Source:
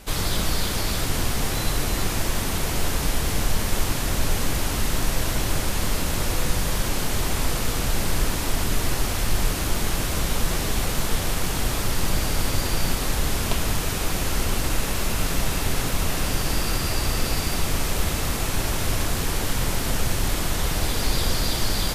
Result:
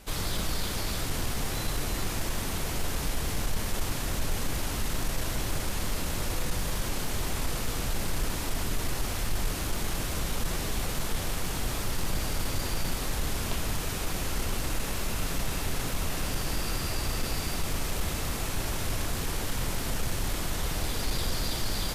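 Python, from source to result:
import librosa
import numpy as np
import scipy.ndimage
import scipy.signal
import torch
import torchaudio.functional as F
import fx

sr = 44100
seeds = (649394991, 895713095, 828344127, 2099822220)

y = 10.0 ** (-12.0 / 20.0) * np.tanh(x / 10.0 ** (-12.0 / 20.0))
y = y * librosa.db_to_amplitude(-6.0)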